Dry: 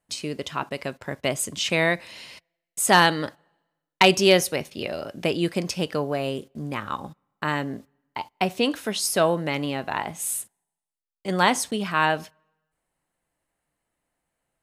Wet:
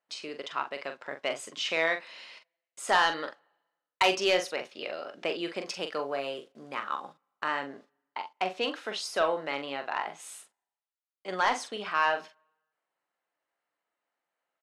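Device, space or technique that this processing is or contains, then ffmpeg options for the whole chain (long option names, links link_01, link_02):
intercom: -filter_complex "[0:a]highpass=450,lowpass=4600,equalizer=frequency=1300:width_type=o:width=0.42:gain=4,asoftclip=type=tanh:threshold=-10.5dB,asplit=2[link_01][link_02];[link_02]adelay=43,volume=-8dB[link_03];[link_01][link_03]amix=inputs=2:normalize=0,asettb=1/sr,asplit=3[link_04][link_05][link_06];[link_04]atrim=end=5.664[link_07];[link_05]atrim=start=5.66:end=7.48,asetpts=PTS-STARTPTS,afade=type=in:duration=0.004:curve=qsin,afade=type=out:start_time=1.816:duration=0.004:curve=qsin,highshelf=frequency=8100:gain=8.5[link_08];[link_06]atrim=start=7.476[link_09];[link_07][link_08]acrossfade=duration=0.004:curve1=hsin:curve2=qsin[link_10];[link_10][link_09]acrossfade=duration=0.004:curve1=qsin:curve2=hsin,volume=-4.5dB"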